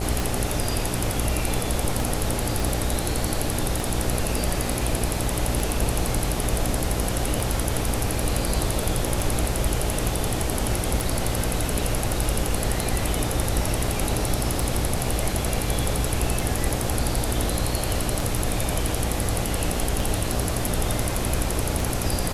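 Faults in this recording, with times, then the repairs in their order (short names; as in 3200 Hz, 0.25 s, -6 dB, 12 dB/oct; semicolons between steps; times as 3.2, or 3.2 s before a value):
buzz 60 Hz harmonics 14 -29 dBFS
tick 33 1/3 rpm
2.6 pop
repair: de-click; de-hum 60 Hz, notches 14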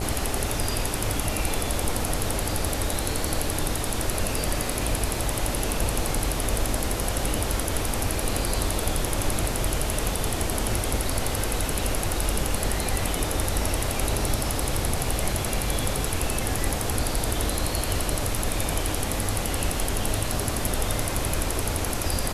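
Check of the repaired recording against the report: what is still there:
2.6 pop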